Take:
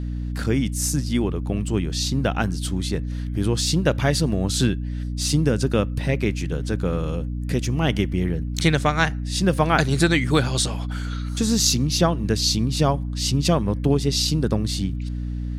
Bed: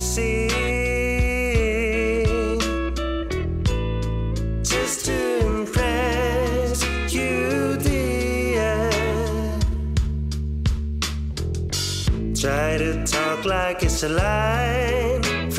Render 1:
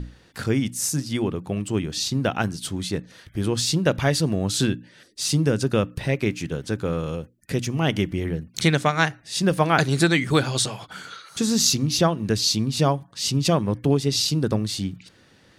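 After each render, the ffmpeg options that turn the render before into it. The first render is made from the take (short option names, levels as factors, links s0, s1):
-af "bandreject=f=60:t=h:w=6,bandreject=f=120:t=h:w=6,bandreject=f=180:t=h:w=6,bandreject=f=240:t=h:w=6,bandreject=f=300:t=h:w=6"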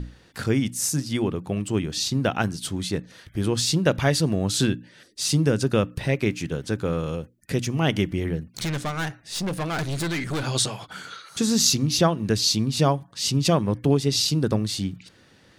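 -filter_complex "[0:a]asettb=1/sr,asplit=3[s0][s1][s2];[s0]atrim=end=8.484[s3];[s1]atrim=start=8.48:end=10.44,asetpts=PTS-STARTPTS,afade=t=in:d=0.004:c=qsin,afade=t=out:st=1.956:d=0.004:c=qsin,aeval=exprs='(tanh(15.8*val(0)+0.3)-tanh(0.3))/15.8':c=same[s4];[s2]atrim=start=10.436[s5];[s3][s4]acrossfade=d=0.004:c1=hsin:c2=qsin[s6];[s6][s5]acrossfade=d=0.004:c1=qsin:c2=hsin"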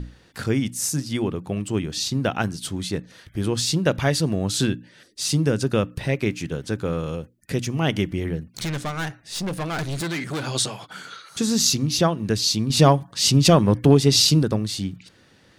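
-filter_complex "[0:a]asettb=1/sr,asplit=3[s0][s1][s2];[s0]atrim=end=10.014[s3];[s1]atrim=start=10.01:end=11.13,asetpts=PTS-STARTPTS,afade=t=in:d=0.004:c=qsin,afade=t=out:st=1.116:d=0.004:c=qsin,highpass=120[s4];[s2]atrim=start=11.126[s5];[s3][s4]acrossfade=d=0.004:c1=hsin:c2=qsin[s6];[s6][s5]acrossfade=d=0.004:c1=qsin:c2=hsin,asettb=1/sr,asplit=3[s7][s8][s9];[s7]atrim=end=12.704[s10];[s8]atrim=start=12.7:end=14.43,asetpts=PTS-STARTPTS,afade=t=in:d=0.004:c=qsin,afade=t=out:st=1.726:d=0.004:c=qsin,acontrast=59[s11];[s9]atrim=start=14.426[s12];[s10][s11]acrossfade=d=0.004:c1=hsin:c2=qsin[s13];[s13][s12]acrossfade=d=0.004:c1=qsin:c2=hsin"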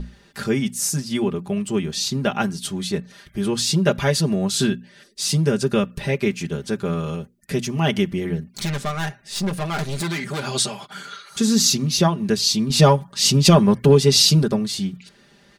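-af "aecho=1:1:5:0.8"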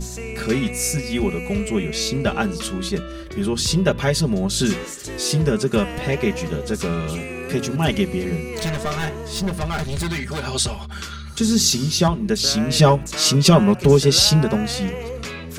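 -filter_complex "[1:a]volume=0.376[s0];[0:a][s0]amix=inputs=2:normalize=0"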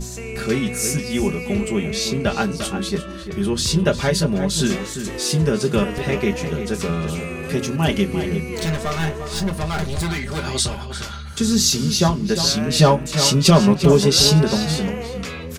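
-filter_complex "[0:a]asplit=2[s0][s1];[s1]adelay=25,volume=0.237[s2];[s0][s2]amix=inputs=2:normalize=0,asplit=2[s3][s4];[s4]adelay=349.9,volume=0.355,highshelf=f=4000:g=-7.87[s5];[s3][s5]amix=inputs=2:normalize=0"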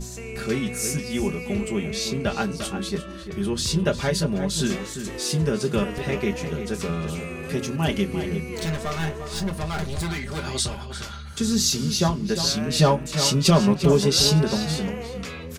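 -af "volume=0.596"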